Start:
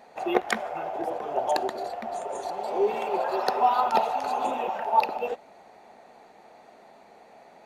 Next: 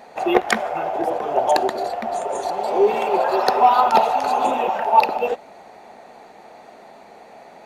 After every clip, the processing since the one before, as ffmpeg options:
-af "acontrast=72,volume=1.19"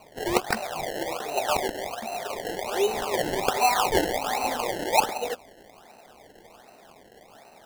-af "equalizer=f=3600:w=1.5:g=4.5,acrusher=samples=25:mix=1:aa=0.000001:lfo=1:lforange=25:lforate=1.3,volume=0.398"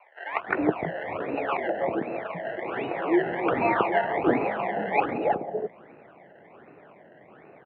-filter_complex "[0:a]highpass=f=170:t=q:w=0.5412,highpass=f=170:t=q:w=1.307,lowpass=f=2400:t=q:w=0.5176,lowpass=f=2400:t=q:w=0.7071,lowpass=f=2400:t=q:w=1.932,afreqshift=-54,acrossover=split=750[s0][s1];[s0]adelay=320[s2];[s2][s1]amix=inputs=2:normalize=0,volume=1.33"

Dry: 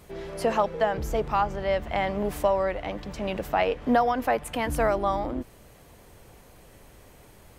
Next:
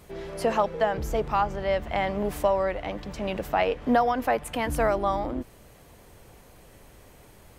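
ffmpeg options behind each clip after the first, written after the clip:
-af anull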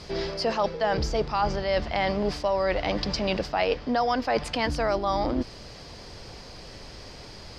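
-af "areverse,acompressor=threshold=0.0316:ratio=6,areverse,lowpass=f=4900:t=q:w=7.2,volume=2.37"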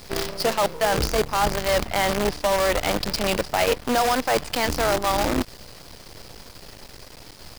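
-af "acrusher=bits=5:dc=4:mix=0:aa=0.000001,volume=1.41"

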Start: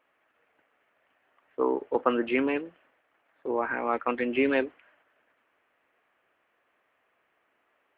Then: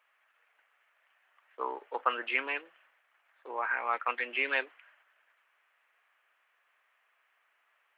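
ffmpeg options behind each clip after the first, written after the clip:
-af "highpass=1100,volume=1.26"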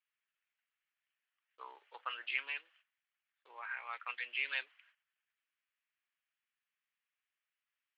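-af "agate=range=0.224:threshold=0.001:ratio=16:detection=peak,bandpass=f=4200:t=q:w=1.5:csg=0,volume=1.12"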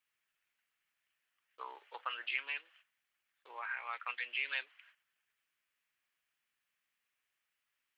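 -af "acompressor=threshold=0.00398:ratio=1.5,volume=1.88"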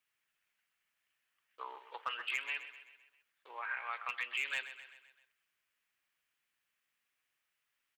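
-af "volume=25.1,asoftclip=hard,volume=0.0398,aecho=1:1:129|258|387|516|645:0.237|0.126|0.0666|0.0353|0.0187,volume=1.12"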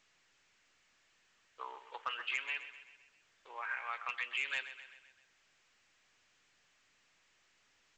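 -ar 16000 -c:a pcm_alaw

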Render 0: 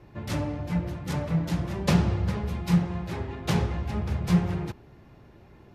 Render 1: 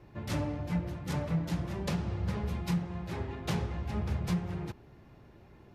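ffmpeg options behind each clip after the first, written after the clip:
-af "alimiter=limit=0.126:level=0:latency=1:release=472,volume=0.668"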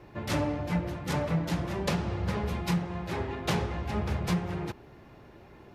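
-af "bass=f=250:g=-6,treble=f=4000:g=-2,volume=2.24"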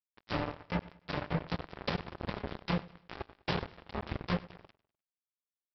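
-af "aresample=11025,acrusher=bits=3:mix=0:aa=0.5,aresample=44100,aecho=1:1:100|200|300:0.1|0.04|0.016,volume=0.596"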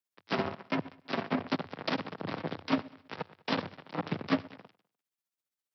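-af "afreqshift=92,tremolo=f=15:d=0.67,volume=2"

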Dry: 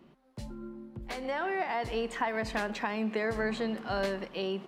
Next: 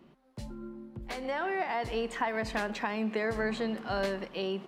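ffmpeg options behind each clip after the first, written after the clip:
-af anull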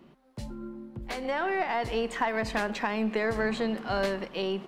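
-af "aeval=exprs='0.141*(cos(1*acos(clip(val(0)/0.141,-1,1)))-cos(1*PI/2))+0.00355*(cos(6*acos(clip(val(0)/0.141,-1,1)))-cos(6*PI/2))':c=same,volume=1.41"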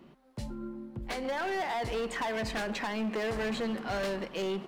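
-af "asoftclip=type=hard:threshold=0.0355"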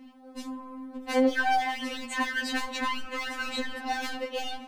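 -af "afftfilt=real='re*3.46*eq(mod(b,12),0)':imag='im*3.46*eq(mod(b,12),0)':win_size=2048:overlap=0.75,volume=2.37"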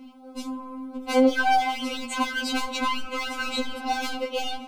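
-af "asuperstop=centerf=1800:order=4:qfactor=3.9,volume=1.68"

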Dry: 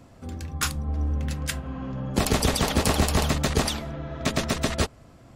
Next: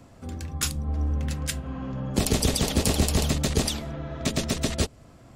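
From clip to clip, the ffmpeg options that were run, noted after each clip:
-filter_complex "[0:a]equalizer=f=7900:w=1.5:g=2,acrossover=split=640|2300[s0][s1][s2];[s1]acompressor=threshold=0.00891:ratio=6[s3];[s0][s3][s2]amix=inputs=3:normalize=0"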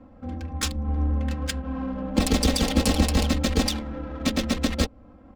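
-af "aecho=1:1:3.8:0.92,adynamicsmooth=sensitivity=5:basefreq=1300"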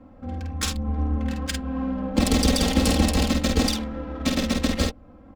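-filter_complex "[0:a]asplit=2[s0][s1];[s1]adelay=50,volume=0.596[s2];[s0][s2]amix=inputs=2:normalize=0"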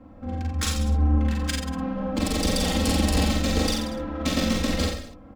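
-filter_complex "[0:a]alimiter=limit=0.2:level=0:latency=1:release=205,asplit=2[s0][s1];[s1]aecho=0:1:40|84|132.4|185.6|244.2:0.631|0.398|0.251|0.158|0.1[s2];[s0][s2]amix=inputs=2:normalize=0"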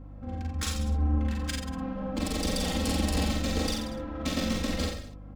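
-af "aeval=exprs='val(0)+0.0126*(sin(2*PI*50*n/s)+sin(2*PI*2*50*n/s)/2+sin(2*PI*3*50*n/s)/3+sin(2*PI*4*50*n/s)/4+sin(2*PI*5*50*n/s)/5)':c=same,volume=0.531"

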